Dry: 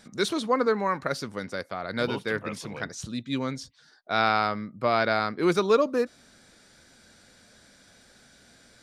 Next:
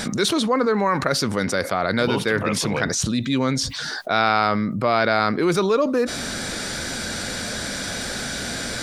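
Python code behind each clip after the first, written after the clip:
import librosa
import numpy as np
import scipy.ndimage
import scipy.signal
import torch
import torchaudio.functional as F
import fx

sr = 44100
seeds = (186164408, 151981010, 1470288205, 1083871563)

y = fx.env_flatten(x, sr, amount_pct=70)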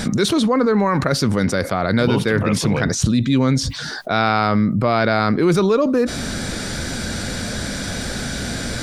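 y = fx.low_shelf(x, sr, hz=260.0, db=10.5)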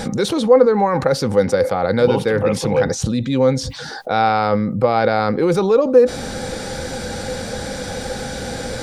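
y = fx.small_body(x, sr, hz=(510.0, 800.0), ring_ms=60, db=16)
y = F.gain(torch.from_numpy(y), -3.5).numpy()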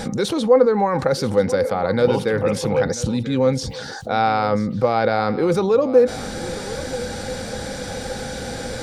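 y = x + 10.0 ** (-16.0 / 20.0) * np.pad(x, (int(988 * sr / 1000.0), 0))[:len(x)]
y = F.gain(torch.from_numpy(y), -2.5).numpy()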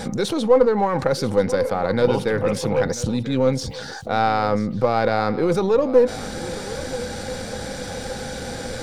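y = np.where(x < 0.0, 10.0 ** (-3.0 / 20.0) * x, x)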